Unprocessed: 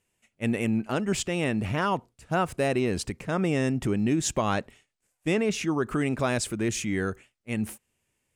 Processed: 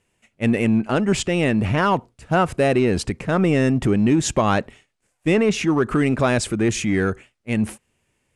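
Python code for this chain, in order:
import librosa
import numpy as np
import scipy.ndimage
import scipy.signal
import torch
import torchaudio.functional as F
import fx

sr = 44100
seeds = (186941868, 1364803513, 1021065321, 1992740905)

p1 = fx.high_shelf(x, sr, hz=4300.0, db=-7.0)
p2 = np.clip(10.0 ** (29.0 / 20.0) * p1, -1.0, 1.0) / 10.0 ** (29.0 / 20.0)
p3 = p1 + F.gain(torch.from_numpy(p2), -9.0).numpy()
p4 = fx.brickwall_lowpass(p3, sr, high_hz=12000.0)
y = F.gain(torch.from_numpy(p4), 6.5).numpy()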